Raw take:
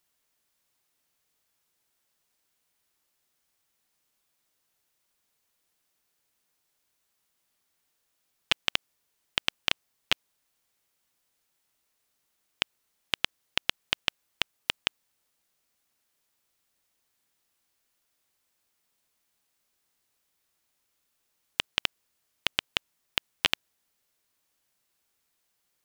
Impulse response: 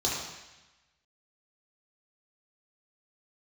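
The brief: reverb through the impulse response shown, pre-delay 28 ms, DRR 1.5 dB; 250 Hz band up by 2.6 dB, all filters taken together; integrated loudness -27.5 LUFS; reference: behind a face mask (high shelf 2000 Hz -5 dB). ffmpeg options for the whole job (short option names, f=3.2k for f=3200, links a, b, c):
-filter_complex "[0:a]equalizer=f=250:t=o:g=3.5,asplit=2[a][b];[1:a]atrim=start_sample=2205,adelay=28[c];[b][c]afir=irnorm=-1:irlink=0,volume=-10.5dB[d];[a][d]amix=inputs=2:normalize=0,highshelf=f=2k:g=-5,volume=4.5dB"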